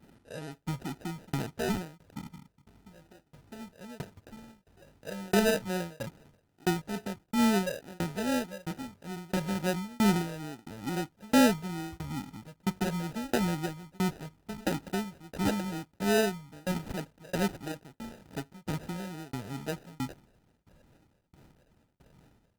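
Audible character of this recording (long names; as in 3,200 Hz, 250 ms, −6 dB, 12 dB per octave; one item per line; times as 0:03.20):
phaser sweep stages 12, 2.3 Hz, lowest notch 330–1,000 Hz
aliases and images of a low sample rate 1,100 Hz, jitter 0%
tremolo saw down 1.5 Hz, depth 100%
Opus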